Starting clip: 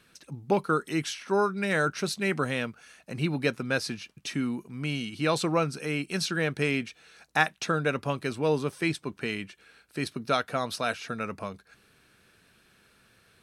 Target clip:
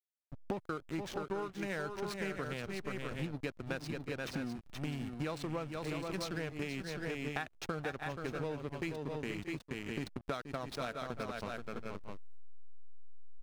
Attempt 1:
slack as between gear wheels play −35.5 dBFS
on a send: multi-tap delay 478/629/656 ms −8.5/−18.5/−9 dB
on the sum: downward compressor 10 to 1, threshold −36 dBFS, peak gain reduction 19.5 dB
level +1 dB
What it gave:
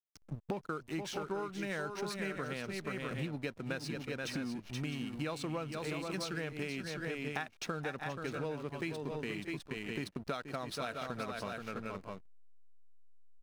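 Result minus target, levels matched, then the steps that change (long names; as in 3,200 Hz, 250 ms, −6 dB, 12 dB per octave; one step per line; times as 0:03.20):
slack as between gear wheels: distortion −8 dB
change: slack as between gear wheels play −26.5 dBFS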